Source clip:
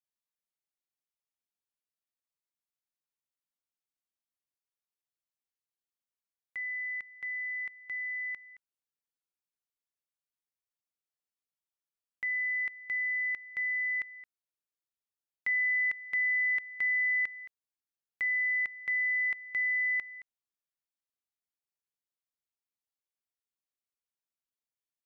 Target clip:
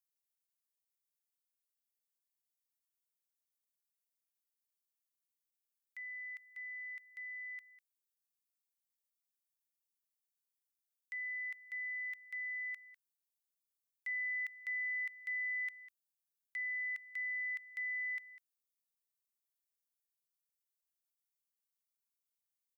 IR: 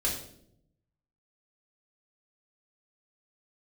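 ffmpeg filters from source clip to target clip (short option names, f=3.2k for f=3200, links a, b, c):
-af "highpass=670,aderivative,atempo=1.1,volume=1.5dB"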